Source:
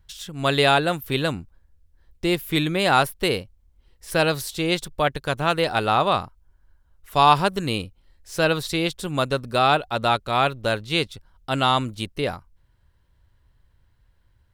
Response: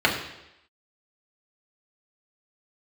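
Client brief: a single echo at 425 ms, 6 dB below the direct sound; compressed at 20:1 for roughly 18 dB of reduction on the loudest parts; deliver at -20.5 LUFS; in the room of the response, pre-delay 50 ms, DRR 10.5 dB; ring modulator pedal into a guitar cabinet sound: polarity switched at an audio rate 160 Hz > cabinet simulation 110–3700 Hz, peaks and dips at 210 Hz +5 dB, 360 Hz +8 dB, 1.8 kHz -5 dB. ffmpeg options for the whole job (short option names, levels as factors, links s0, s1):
-filter_complex "[0:a]acompressor=threshold=0.0398:ratio=20,aecho=1:1:425:0.501,asplit=2[s0][s1];[1:a]atrim=start_sample=2205,adelay=50[s2];[s1][s2]afir=irnorm=-1:irlink=0,volume=0.0376[s3];[s0][s3]amix=inputs=2:normalize=0,aeval=exprs='val(0)*sgn(sin(2*PI*160*n/s))':c=same,highpass=110,equalizer=f=210:t=q:w=4:g=5,equalizer=f=360:t=q:w=4:g=8,equalizer=f=1800:t=q:w=4:g=-5,lowpass=f=3700:w=0.5412,lowpass=f=3700:w=1.3066,volume=4.22"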